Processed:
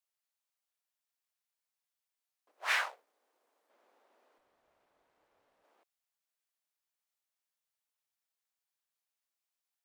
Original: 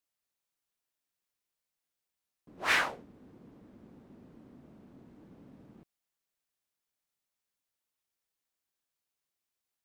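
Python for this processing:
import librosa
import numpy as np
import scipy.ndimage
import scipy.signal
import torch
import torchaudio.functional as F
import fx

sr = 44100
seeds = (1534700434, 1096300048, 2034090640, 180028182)

y = fx.law_mismatch(x, sr, coded='A', at=(2.51, 3.7))
y = scipy.signal.sosfilt(scipy.signal.butter(4, 580.0, 'highpass', fs=sr, output='sos'), y)
y = fx.tube_stage(y, sr, drive_db=64.0, bias=0.8, at=(4.38, 5.64))
y = F.gain(torch.from_numpy(y), -3.0).numpy()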